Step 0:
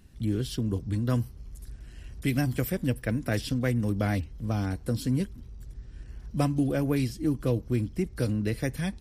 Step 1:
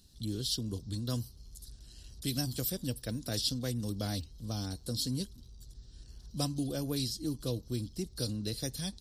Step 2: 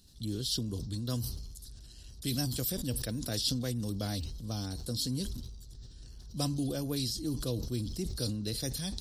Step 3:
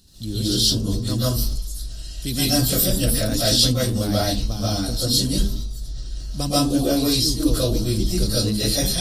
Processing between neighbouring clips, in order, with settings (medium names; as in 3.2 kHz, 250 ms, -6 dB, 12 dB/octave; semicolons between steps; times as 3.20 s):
resonant high shelf 3 kHz +11 dB, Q 3; trim -8.5 dB
decay stretcher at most 37 dB/s
reverberation RT60 0.35 s, pre-delay 100 ms, DRR -9.5 dB; trim +6 dB